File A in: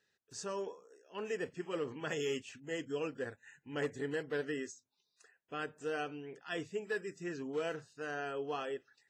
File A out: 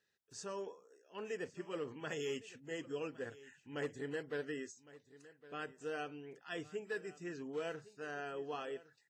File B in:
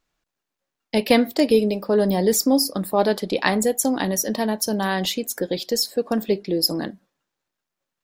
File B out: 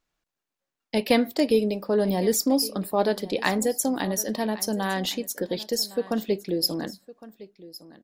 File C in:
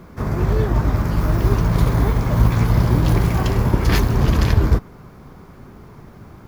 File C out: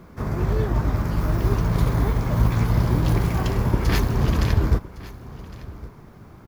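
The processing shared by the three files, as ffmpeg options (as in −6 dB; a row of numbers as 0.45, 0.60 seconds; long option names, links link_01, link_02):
-af "aecho=1:1:1110:0.119,volume=-4dB"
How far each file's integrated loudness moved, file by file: −4.0, −4.0, −4.0 LU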